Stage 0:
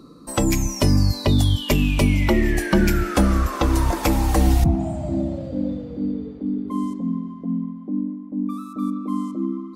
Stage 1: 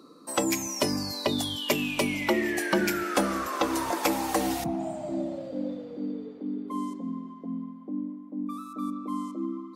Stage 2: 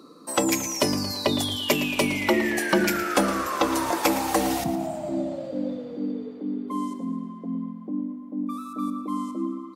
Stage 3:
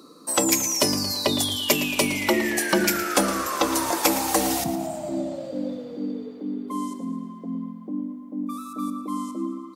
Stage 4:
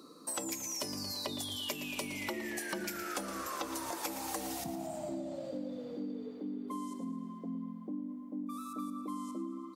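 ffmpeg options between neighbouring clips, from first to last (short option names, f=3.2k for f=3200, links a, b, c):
-af "highpass=330,volume=-2.5dB"
-af "aecho=1:1:113|226|339|452|565:0.224|0.114|0.0582|0.0297|0.0151,volume=3.5dB"
-af "bass=f=250:g=-1,treble=f=4k:g=7"
-af "acompressor=threshold=-30dB:ratio=6,volume=-6dB"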